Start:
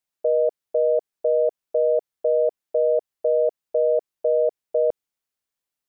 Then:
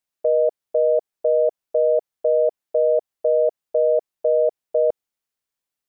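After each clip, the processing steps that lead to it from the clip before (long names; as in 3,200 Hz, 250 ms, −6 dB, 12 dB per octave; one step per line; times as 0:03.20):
dynamic equaliser 720 Hz, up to +3 dB, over −34 dBFS, Q 1.5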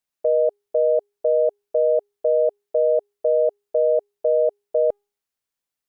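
tuned comb filter 410 Hz, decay 0.42 s, mix 30%
level +2.5 dB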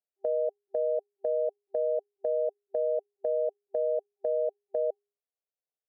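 brick-wall band-pass 390–790 Hz
dynamic equaliser 520 Hz, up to −6 dB, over −31 dBFS, Q 1.1
level −4.5 dB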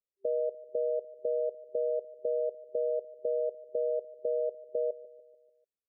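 Butterworth low-pass 610 Hz 72 dB per octave
repeating echo 147 ms, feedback 52%, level −17 dB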